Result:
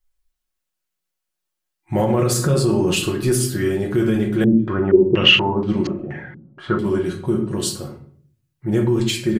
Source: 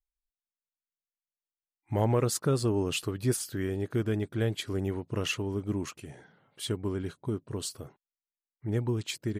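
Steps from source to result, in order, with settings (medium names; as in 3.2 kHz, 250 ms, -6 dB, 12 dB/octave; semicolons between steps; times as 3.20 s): comb 5.5 ms, depth 59%; reverberation RT60 0.55 s, pre-delay 6 ms, DRR 1 dB; loudness maximiser +17.5 dB; 4.44–6.79 s: step-sequenced low-pass 4.2 Hz 270–4400 Hz; trim -8.5 dB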